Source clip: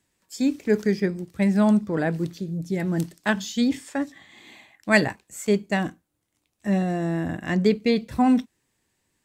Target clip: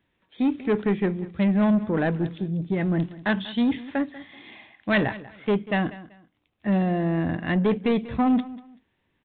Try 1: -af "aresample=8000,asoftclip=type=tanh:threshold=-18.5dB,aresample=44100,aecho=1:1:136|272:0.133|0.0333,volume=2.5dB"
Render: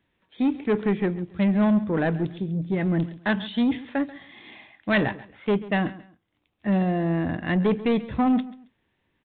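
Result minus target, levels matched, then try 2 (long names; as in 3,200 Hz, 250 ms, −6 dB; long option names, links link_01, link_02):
echo 55 ms early
-af "aresample=8000,asoftclip=type=tanh:threshold=-18.5dB,aresample=44100,aecho=1:1:191|382:0.133|0.0333,volume=2.5dB"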